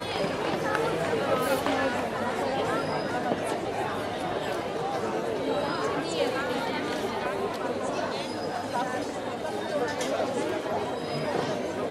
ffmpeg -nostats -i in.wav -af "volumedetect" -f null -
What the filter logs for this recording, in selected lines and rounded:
mean_volume: -29.0 dB
max_volume: -7.9 dB